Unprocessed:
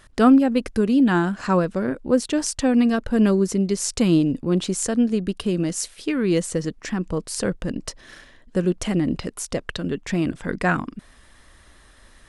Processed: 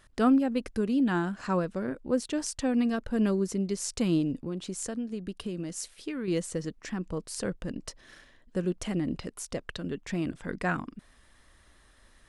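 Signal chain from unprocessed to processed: 4.41–6.28 compressor 4:1, threshold -23 dBFS, peak gain reduction 7.5 dB; gain -8.5 dB

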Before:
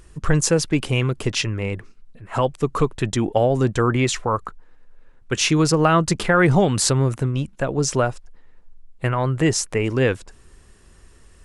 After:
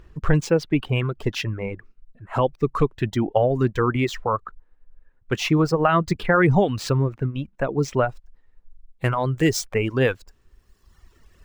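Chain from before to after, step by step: median filter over 5 samples; reverb removal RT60 1.4 s; high shelf 4400 Hz -11.5 dB, from 8.09 s +2.5 dB

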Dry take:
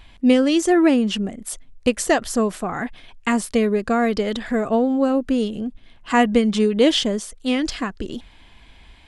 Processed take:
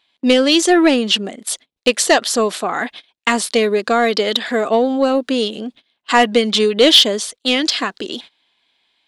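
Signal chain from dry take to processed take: gate -37 dBFS, range -22 dB; HPF 340 Hz 12 dB/oct; bell 3900 Hz +10.5 dB 0.88 oct; soft clip -7.5 dBFS, distortion -19 dB; gain +6.5 dB

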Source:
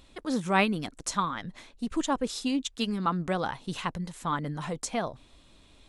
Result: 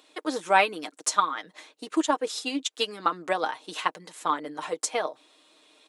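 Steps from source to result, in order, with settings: HPF 330 Hz 24 dB/oct; comb 6.5 ms, depth 54%; transient shaper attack +5 dB, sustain 0 dB; gain +1 dB

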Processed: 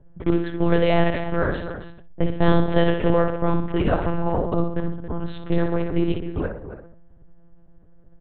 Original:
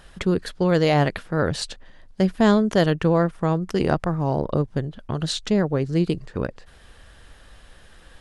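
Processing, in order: on a send: flutter echo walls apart 10.6 m, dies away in 0.61 s; on the sum: low-pass opened by the level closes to 350 Hz, open at -14 dBFS; outdoor echo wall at 47 m, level -11 dB; monotone LPC vocoder at 8 kHz 170 Hz

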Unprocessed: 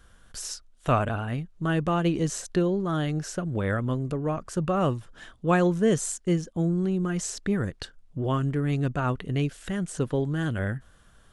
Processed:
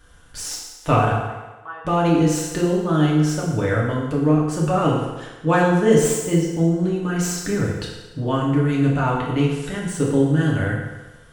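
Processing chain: tracing distortion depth 0.033 ms; 1.14–1.85 ladder band-pass 1100 Hz, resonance 65%; FDN reverb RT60 1.2 s, low-frequency decay 0.75×, high-frequency decay 0.9×, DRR -4.5 dB; gain +1.5 dB

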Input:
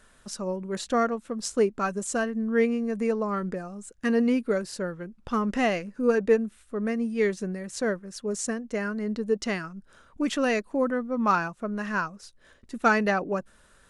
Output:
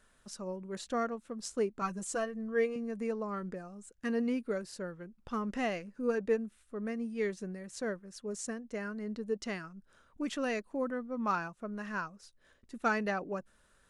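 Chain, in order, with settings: 1.81–2.76 comb 6.1 ms, depth 80%; gain -9 dB

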